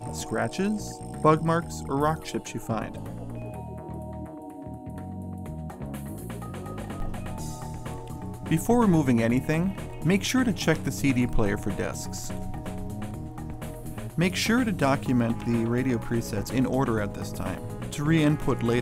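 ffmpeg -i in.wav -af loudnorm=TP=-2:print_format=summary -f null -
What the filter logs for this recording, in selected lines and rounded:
Input Integrated:    -27.6 LUFS
Input True Peak:      -7.0 dBTP
Input LRA:            10.7 LU
Input Threshold:     -37.8 LUFS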